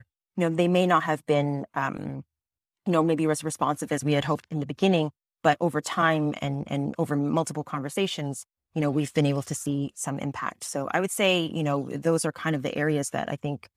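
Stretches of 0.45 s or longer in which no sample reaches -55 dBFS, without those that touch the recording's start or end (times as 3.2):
2.23–2.86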